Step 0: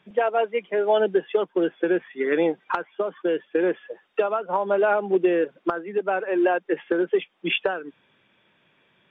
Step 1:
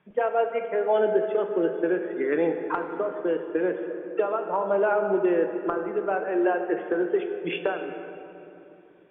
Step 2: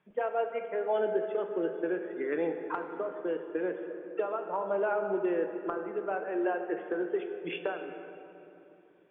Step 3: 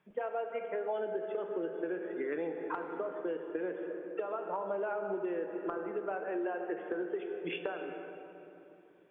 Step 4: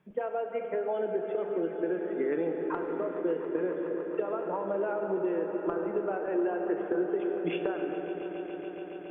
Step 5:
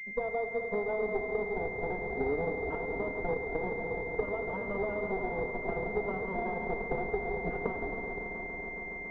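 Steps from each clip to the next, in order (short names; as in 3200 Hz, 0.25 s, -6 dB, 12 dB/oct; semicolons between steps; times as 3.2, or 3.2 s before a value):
LPF 2100 Hz 12 dB/oct; on a send at -5.5 dB: reverb RT60 3.0 s, pre-delay 7 ms; on the sum: gain -3 dB
low shelf 160 Hz -4 dB; gain -6.5 dB
compressor, threshold -32 dBFS, peak gain reduction 8.5 dB
low shelf 420 Hz +10 dB; swelling echo 0.14 s, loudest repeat 5, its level -16 dB
minimum comb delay 4.4 ms; pulse-width modulation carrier 2100 Hz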